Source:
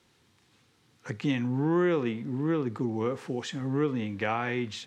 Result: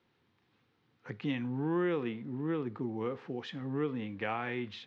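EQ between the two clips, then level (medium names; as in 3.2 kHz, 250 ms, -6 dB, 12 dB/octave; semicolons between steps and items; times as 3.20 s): dynamic bell 3.6 kHz, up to +5 dB, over -47 dBFS, Q 0.87; distance through air 250 m; bass shelf 70 Hz -10 dB; -5.0 dB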